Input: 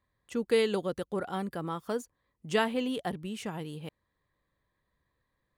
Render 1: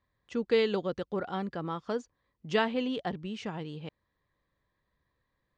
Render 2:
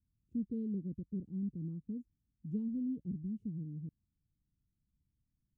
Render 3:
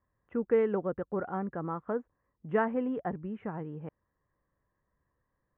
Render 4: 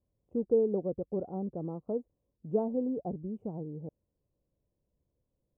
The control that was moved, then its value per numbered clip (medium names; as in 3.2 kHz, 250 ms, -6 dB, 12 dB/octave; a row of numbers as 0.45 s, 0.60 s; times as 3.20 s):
inverse Chebyshev low-pass, stop band from: 12 kHz, 650 Hz, 4.3 kHz, 1.7 kHz